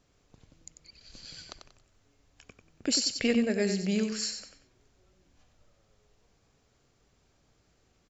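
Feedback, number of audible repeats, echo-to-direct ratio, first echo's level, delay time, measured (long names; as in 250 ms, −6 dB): 30%, 3, −6.5 dB, −7.0 dB, 93 ms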